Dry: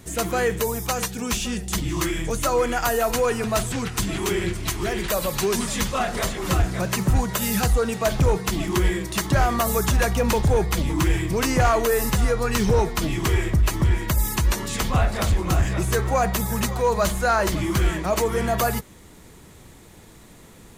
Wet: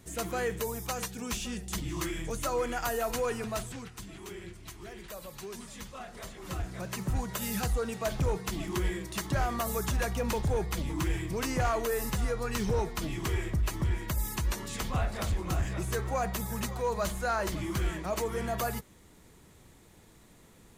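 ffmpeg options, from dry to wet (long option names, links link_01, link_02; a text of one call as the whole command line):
ffmpeg -i in.wav -af "afade=type=out:start_time=3.35:duration=0.62:silence=0.316228,afade=type=in:start_time=6.15:duration=1.27:silence=0.334965" out.wav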